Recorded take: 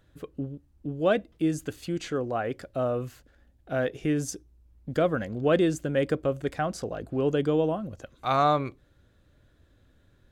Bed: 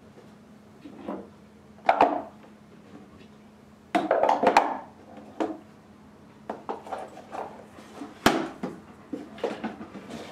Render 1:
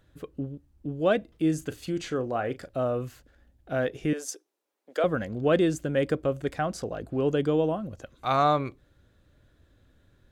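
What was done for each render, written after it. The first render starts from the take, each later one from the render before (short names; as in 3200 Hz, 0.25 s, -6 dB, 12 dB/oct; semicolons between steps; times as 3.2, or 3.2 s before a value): 1.18–2.69 doubler 38 ms -13 dB; 4.13–5.04 HPF 430 Hz 24 dB/oct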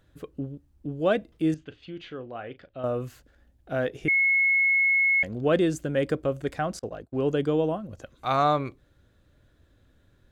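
1.54–2.84 ladder low-pass 3800 Hz, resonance 45%; 4.08–5.23 bleep 2180 Hz -18.5 dBFS; 6.79–7.89 expander -31 dBFS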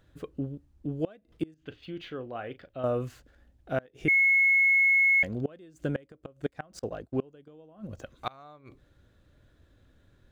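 median filter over 3 samples; flipped gate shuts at -18 dBFS, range -28 dB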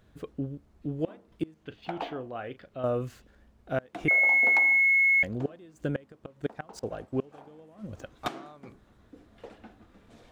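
add bed -16.5 dB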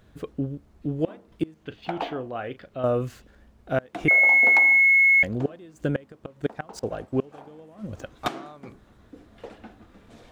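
gain +5 dB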